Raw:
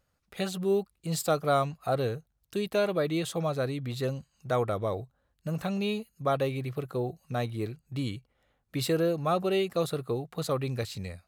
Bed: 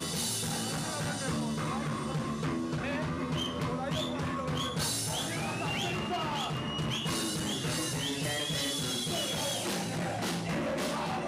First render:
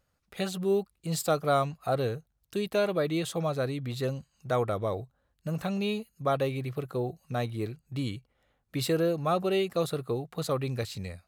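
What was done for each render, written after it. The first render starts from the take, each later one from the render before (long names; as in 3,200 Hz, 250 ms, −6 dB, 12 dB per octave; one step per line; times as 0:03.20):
no processing that can be heard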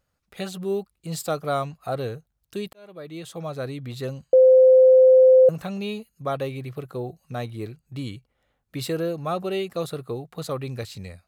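0:02.73–0:03.72: fade in linear
0:04.33–0:05.49: beep over 517 Hz −9.5 dBFS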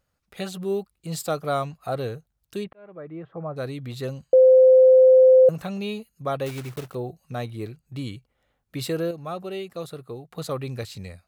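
0:02.63–0:03.56: low-pass filter 2,400 Hz → 1,400 Hz 24 dB per octave
0:06.46–0:06.96: one scale factor per block 3 bits
0:09.11–0:10.31: clip gain −5.5 dB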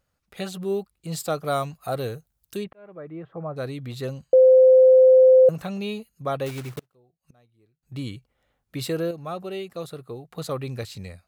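0:01.46–0:02.57: high-shelf EQ 7,000 Hz +10.5 dB
0:06.79–0:07.83: gate with flip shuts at −40 dBFS, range −30 dB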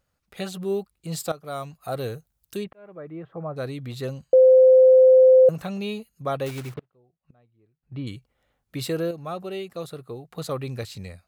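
0:01.32–0:02.12: fade in, from −15 dB
0:06.74–0:08.07: high-frequency loss of the air 370 metres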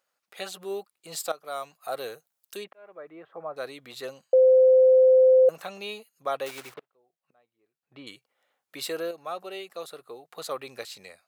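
high-pass filter 550 Hz 12 dB per octave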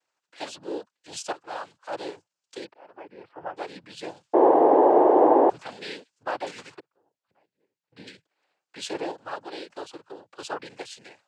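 cochlear-implant simulation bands 8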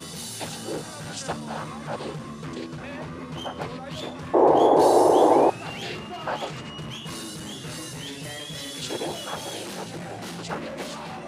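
mix in bed −3 dB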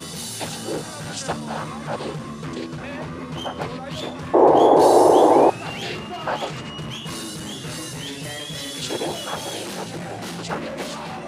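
level +4 dB
brickwall limiter −3 dBFS, peak gain reduction 1.5 dB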